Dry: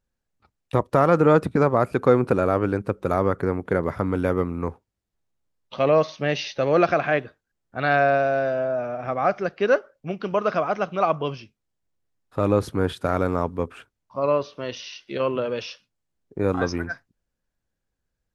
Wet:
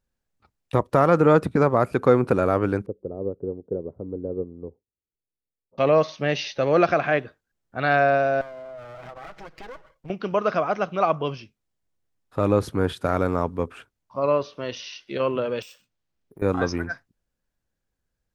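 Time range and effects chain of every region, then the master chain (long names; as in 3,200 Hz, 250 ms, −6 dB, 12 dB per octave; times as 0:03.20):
0:02.86–0:05.78: transistor ladder low-pass 540 Hz, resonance 45% + expander for the loud parts, over −38 dBFS
0:08.41–0:10.10: lower of the sound and its delayed copy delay 6.2 ms + downward compressor 10 to 1, threshold −36 dBFS
0:15.62–0:16.42: downward compressor 2.5 to 1, threshold −48 dBFS + bad sample-rate conversion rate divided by 4×, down none, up hold
whole clip: no processing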